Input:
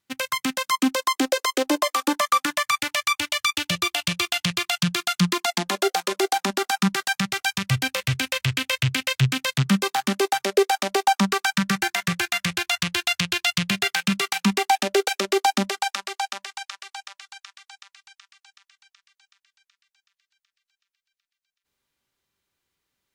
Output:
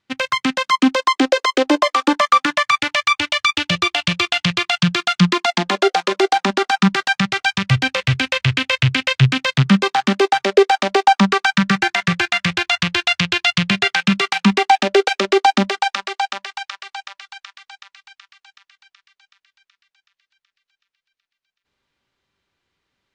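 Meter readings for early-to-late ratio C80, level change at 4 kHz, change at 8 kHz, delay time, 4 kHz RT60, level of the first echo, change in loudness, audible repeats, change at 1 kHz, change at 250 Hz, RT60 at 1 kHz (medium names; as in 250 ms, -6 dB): no reverb, +5.0 dB, -3.0 dB, no echo, no reverb, no echo, +6.0 dB, no echo, +7.0 dB, +7.0 dB, no reverb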